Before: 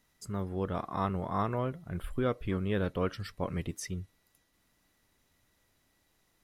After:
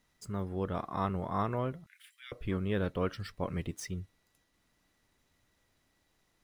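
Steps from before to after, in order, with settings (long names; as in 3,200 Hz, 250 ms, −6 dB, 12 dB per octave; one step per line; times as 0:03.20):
running median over 3 samples
0:01.86–0:02.32: elliptic high-pass filter 1,900 Hz, stop band 80 dB
level −1 dB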